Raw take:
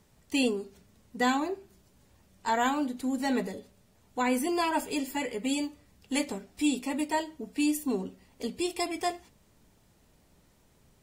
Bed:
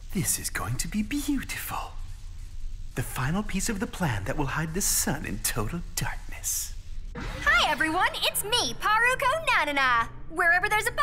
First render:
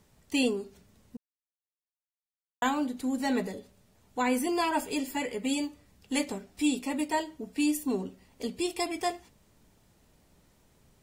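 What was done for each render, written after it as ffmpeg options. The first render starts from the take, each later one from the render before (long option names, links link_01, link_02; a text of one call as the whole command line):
ffmpeg -i in.wav -filter_complex "[0:a]asplit=3[link_01][link_02][link_03];[link_01]atrim=end=1.17,asetpts=PTS-STARTPTS,afade=type=out:start_time=1.166:duration=0.004:curve=hsin[link_04];[link_02]atrim=start=1.17:end=2.62,asetpts=PTS-STARTPTS,volume=0[link_05];[link_03]atrim=start=2.62,asetpts=PTS-STARTPTS,afade=type=in:duration=0.004:curve=hsin[link_06];[link_04][link_05][link_06]concat=n=3:v=0:a=1" out.wav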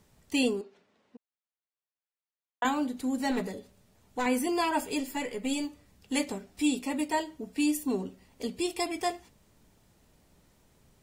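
ffmpeg -i in.wav -filter_complex "[0:a]asettb=1/sr,asplit=3[link_01][link_02][link_03];[link_01]atrim=end=0.614[link_04];[link_02]atrim=start=0.61:end=2.65,asetpts=PTS-STARTPTS,afade=type=in:duration=0.004:curve=qsin,afade=type=out:start_time=2.036:duration=0.004:curve=qsin,highpass=360,lowpass=3300[link_05];[link_03]atrim=start=2.646[link_06];[link_04][link_05]acrossfade=duration=0.004:curve1=hsin:curve2=qsin[link_07];[link_07][link_06]acrossfade=duration=0.004:curve1=qsin:curve2=hsin,asettb=1/sr,asplit=3[link_08][link_09][link_10];[link_08]atrim=end=3.314[link_11];[link_09]atrim=start=3.31:end=4.26,asetpts=PTS-STARTPTS,afade=type=in:duration=0.004:curve=qsin,afade=type=out:start_time=0.946:duration=0.004:curve=qsin,aeval=exprs='clip(val(0),-1,0.0335)':channel_layout=same[link_12];[link_10]atrim=start=4.256[link_13];[link_11][link_12]acrossfade=duration=0.004:curve1=hsin:curve2=qsin[link_14];[link_14][link_13]acrossfade=duration=0.004:curve1=qsin:curve2=hsin,asettb=1/sr,asplit=3[link_15][link_16][link_17];[link_15]atrim=end=5.004[link_18];[link_16]atrim=start=5:end=5.65,asetpts=PTS-STARTPTS,afade=type=in:duration=0.004:curve=qsin,afade=type=out:start_time=0.646:duration=0.004:curve=qsin,aeval=exprs='if(lt(val(0),0),0.708*val(0),val(0))':channel_layout=same[link_19];[link_17]atrim=start=5.646[link_20];[link_18][link_19]acrossfade=duration=0.004:curve1=hsin:curve2=qsin[link_21];[link_21][link_20]acrossfade=duration=0.004:curve1=qsin:curve2=hsin" out.wav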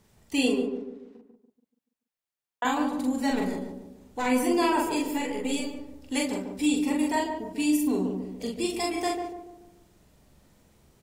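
ffmpeg -i in.wav -filter_complex "[0:a]asplit=2[link_01][link_02];[link_02]adelay=43,volume=-2dB[link_03];[link_01][link_03]amix=inputs=2:normalize=0,asplit=2[link_04][link_05];[link_05]adelay=144,lowpass=frequency=890:poles=1,volume=-4dB,asplit=2[link_06][link_07];[link_07]adelay=144,lowpass=frequency=890:poles=1,volume=0.49,asplit=2[link_08][link_09];[link_09]adelay=144,lowpass=frequency=890:poles=1,volume=0.49,asplit=2[link_10][link_11];[link_11]adelay=144,lowpass=frequency=890:poles=1,volume=0.49,asplit=2[link_12][link_13];[link_13]adelay=144,lowpass=frequency=890:poles=1,volume=0.49,asplit=2[link_14][link_15];[link_15]adelay=144,lowpass=frequency=890:poles=1,volume=0.49[link_16];[link_04][link_06][link_08][link_10][link_12][link_14][link_16]amix=inputs=7:normalize=0" out.wav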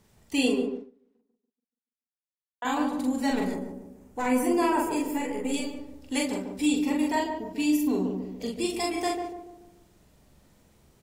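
ffmpeg -i in.wav -filter_complex "[0:a]asettb=1/sr,asplit=3[link_01][link_02][link_03];[link_01]atrim=end=3.544[link_04];[link_02]atrim=start=3.54:end=5.54,asetpts=PTS-STARTPTS,afade=type=in:duration=0.004:curve=qsin,afade=type=out:start_time=1.996:duration=0.004:curve=qsin,equalizer=frequency=3800:width=1.4:gain=-9[link_05];[link_03]atrim=start=5.536[link_06];[link_04][link_05]acrossfade=duration=0.004:curve1=hsin:curve2=qsin[link_07];[link_07][link_06]acrossfade=duration=0.004:curve1=qsin:curve2=hsin,asettb=1/sr,asplit=3[link_08][link_09][link_10];[link_08]atrim=end=6.734[link_11];[link_09]atrim=start=6.73:end=8.48,asetpts=PTS-STARTPTS,afade=type=in:duration=0.004:curve=qsin,afade=type=out:start_time=1.746:duration=0.004:curve=qsin,equalizer=frequency=9000:width=3.9:gain=-10[link_12];[link_10]atrim=start=8.476[link_13];[link_11][link_12]acrossfade=duration=0.004:curve1=hsin:curve2=qsin[link_14];[link_14][link_13]acrossfade=duration=0.004:curve1=qsin:curve2=hsin,asplit=3[link_15][link_16][link_17];[link_15]atrim=end=0.91,asetpts=PTS-STARTPTS,afade=type=out:start_time=0.71:duration=0.2:silence=0.112202[link_18];[link_16]atrim=start=0.91:end=2.54,asetpts=PTS-STARTPTS,volume=-19dB[link_19];[link_17]atrim=start=2.54,asetpts=PTS-STARTPTS,afade=type=in:duration=0.2:silence=0.112202[link_20];[link_18][link_19][link_20]concat=n=3:v=0:a=1" out.wav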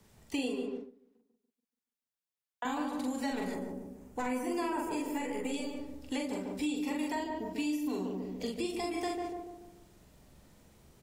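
ffmpeg -i in.wav -filter_complex "[0:a]acrossover=split=370|1100[link_01][link_02][link_03];[link_01]acompressor=threshold=-38dB:ratio=4[link_04];[link_02]acompressor=threshold=-39dB:ratio=4[link_05];[link_03]acompressor=threshold=-42dB:ratio=4[link_06];[link_04][link_05][link_06]amix=inputs=3:normalize=0,acrossover=split=120|1400|6200[link_07][link_08][link_09][link_10];[link_10]alimiter=level_in=21dB:limit=-24dB:level=0:latency=1,volume=-21dB[link_11];[link_07][link_08][link_09][link_11]amix=inputs=4:normalize=0" out.wav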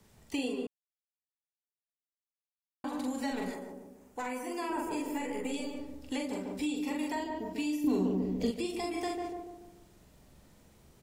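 ffmpeg -i in.wav -filter_complex "[0:a]asettb=1/sr,asplit=3[link_01][link_02][link_03];[link_01]atrim=end=3.514[link_04];[link_02]atrim=start=3.51:end=4.7,asetpts=PTS-STARTPTS,afade=type=in:duration=0.004:curve=qsin,afade=type=out:start_time=1.186:duration=0.004:curve=qsin,lowshelf=frequency=270:gain=-11.5[link_05];[link_03]atrim=start=4.696[link_06];[link_04][link_05]acrossfade=duration=0.004:curve1=hsin:curve2=qsin[link_07];[link_07][link_06]acrossfade=duration=0.004:curve1=qsin:curve2=hsin,asettb=1/sr,asplit=3[link_08][link_09][link_10];[link_08]atrim=end=7.844[link_11];[link_09]atrim=start=7.84:end=8.51,asetpts=PTS-STARTPTS,afade=type=in:duration=0.004:curve=qsin,afade=type=out:start_time=0.666:duration=0.004:curve=qsin,lowshelf=frequency=410:gain=10[link_12];[link_10]atrim=start=8.506[link_13];[link_11][link_12]acrossfade=duration=0.004:curve1=hsin:curve2=qsin[link_14];[link_14][link_13]acrossfade=duration=0.004:curve1=qsin:curve2=hsin,asplit=3[link_15][link_16][link_17];[link_15]atrim=end=0.67,asetpts=PTS-STARTPTS,afade=type=out:start_time=0.666:duration=0.004:curve=hsin[link_18];[link_16]atrim=start=0.67:end=2.84,asetpts=PTS-STARTPTS,volume=0[link_19];[link_17]atrim=start=2.84,asetpts=PTS-STARTPTS,afade=type=in:duration=0.004:curve=hsin[link_20];[link_18][link_19][link_20]concat=n=3:v=0:a=1" out.wav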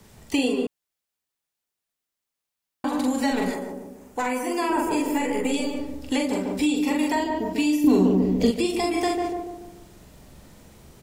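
ffmpeg -i in.wav -af "volume=11dB" out.wav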